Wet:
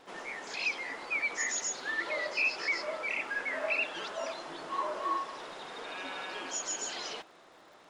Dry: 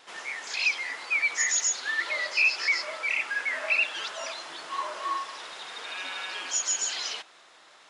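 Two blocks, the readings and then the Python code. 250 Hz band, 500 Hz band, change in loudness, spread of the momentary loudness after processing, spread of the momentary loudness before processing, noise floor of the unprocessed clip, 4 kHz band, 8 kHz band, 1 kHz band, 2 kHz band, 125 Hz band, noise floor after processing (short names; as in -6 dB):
+6.5 dB, +3.0 dB, -6.5 dB, 11 LU, 13 LU, -55 dBFS, -8.0 dB, -8.5 dB, -1.5 dB, -6.0 dB, n/a, -58 dBFS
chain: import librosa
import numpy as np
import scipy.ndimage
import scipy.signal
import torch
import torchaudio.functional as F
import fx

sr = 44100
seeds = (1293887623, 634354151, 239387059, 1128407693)

y = fx.tilt_shelf(x, sr, db=9.0, hz=880.0)
y = fx.dmg_crackle(y, sr, seeds[0], per_s=84.0, level_db=-56.0)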